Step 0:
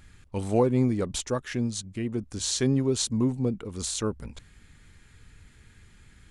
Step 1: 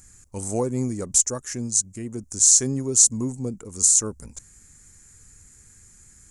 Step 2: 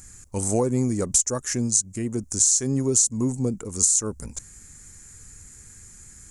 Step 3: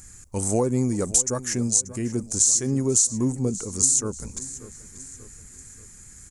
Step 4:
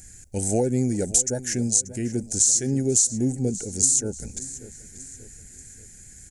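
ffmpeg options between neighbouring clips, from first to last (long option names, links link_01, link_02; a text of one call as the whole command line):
ffmpeg -i in.wav -af "highshelf=frequency=4900:width_type=q:width=3:gain=13,volume=-2.5dB" out.wav
ffmpeg -i in.wav -af "acompressor=threshold=-22dB:ratio=6,volume=5dB" out.wav
ffmpeg -i in.wav -af "aecho=1:1:584|1168|1752|2336:0.15|0.0703|0.0331|0.0155" out.wav
ffmpeg -i in.wav -af "asuperstop=centerf=1100:order=12:qfactor=1.9" out.wav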